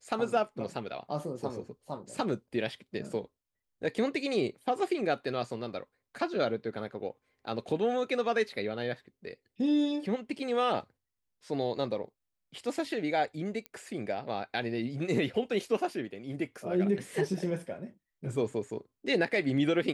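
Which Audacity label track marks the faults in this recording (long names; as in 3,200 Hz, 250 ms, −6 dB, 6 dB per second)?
13.660000	13.660000	click −25 dBFS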